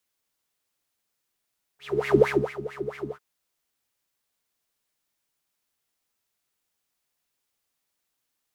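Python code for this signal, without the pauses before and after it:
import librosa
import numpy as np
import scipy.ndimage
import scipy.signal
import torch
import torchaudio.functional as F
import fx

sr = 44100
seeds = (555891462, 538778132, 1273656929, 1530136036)

y = fx.sub_patch_wobble(sr, seeds[0], note=49, wave='triangle', wave2='triangle', interval_st=19, level2_db=-3.5, sub_db=-7, noise_db=-7.0, kind='bandpass', cutoff_hz=440.0, q=8.5, env_oct=1.5, env_decay_s=0.27, env_sustain_pct=50, attack_ms=419.0, decay_s=0.32, sustain_db=-15, release_s=0.07, note_s=1.33, lfo_hz=4.5, wobble_oct=1.6)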